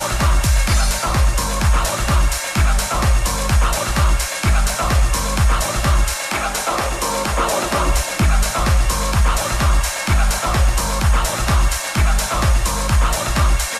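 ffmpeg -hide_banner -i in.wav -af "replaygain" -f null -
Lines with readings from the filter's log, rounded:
track_gain = +3.0 dB
track_peak = 0.366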